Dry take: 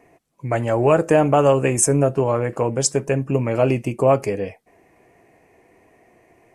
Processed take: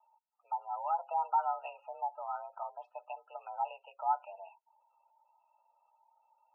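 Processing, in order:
formant filter a
gate on every frequency bin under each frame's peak −20 dB strong
single-sideband voice off tune +190 Hz 350–2,900 Hz
level −8 dB

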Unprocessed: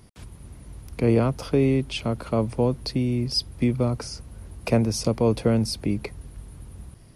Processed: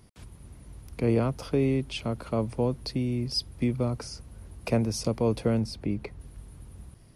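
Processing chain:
0:05.60–0:06.20: low-pass filter 3,100 Hz 6 dB per octave
level −4.5 dB

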